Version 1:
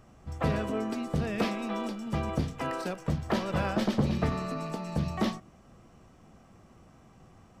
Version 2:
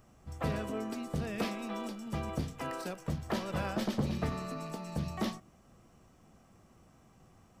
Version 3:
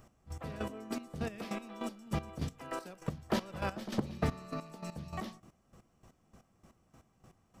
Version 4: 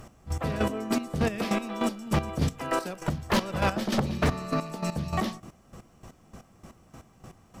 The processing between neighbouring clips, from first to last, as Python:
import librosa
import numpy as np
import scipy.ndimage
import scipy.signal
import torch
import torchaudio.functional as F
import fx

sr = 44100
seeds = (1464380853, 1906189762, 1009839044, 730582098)

y1 = fx.high_shelf(x, sr, hz=7800.0, db=10.0)
y1 = y1 * librosa.db_to_amplitude(-5.5)
y2 = fx.step_gate(y1, sr, bpm=199, pattern='x...x...', floor_db=-12.0, edge_ms=4.5)
y2 = y2 * librosa.db_to_amplitude(2.5)
y3 = fx.fold_sine(y2, sr, drive_db=9, ceiling_db=-18.0)